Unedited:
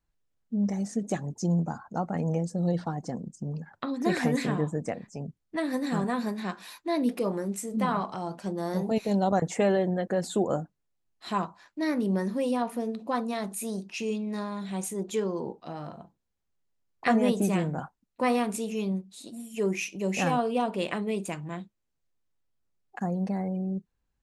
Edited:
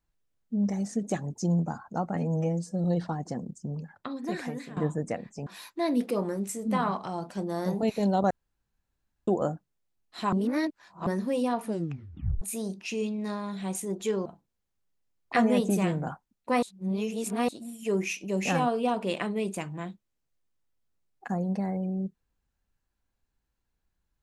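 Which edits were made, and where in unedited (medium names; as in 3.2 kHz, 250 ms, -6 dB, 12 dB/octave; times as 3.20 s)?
2.17–2.62 s: stretch 1.5×
3.38–4.54 s: fade out, to -17 dB
5.24–6.55 s: delete
9.39–10.36 s: room tone
11.41–12.15 s: reverse
12.72 s: tape stop 0.78 s
15.34–15.97 s: delete
18.34–19.20 s: reverse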